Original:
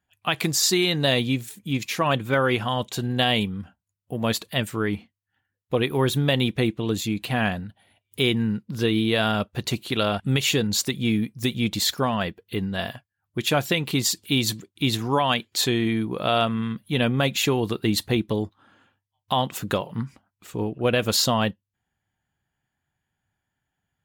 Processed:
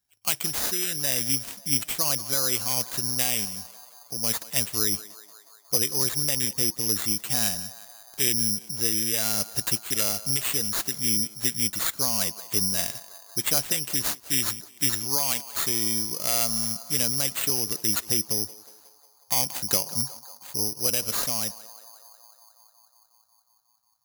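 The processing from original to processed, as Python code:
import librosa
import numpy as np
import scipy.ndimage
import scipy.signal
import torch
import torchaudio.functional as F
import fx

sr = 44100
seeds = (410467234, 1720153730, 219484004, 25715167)

y = fx.rider(x, sr, range_db=10, speed_s=0.5)
y = fx.echo_banded(y, sr, ms=181, feedback_pct=82, hz=1000.0, wet_db=-14)
y = (np.kron(y[::8], np.eye(8)[0]) * 8)[:len(y)]
y = y * 10.0 ** (-11.5 / 20.0)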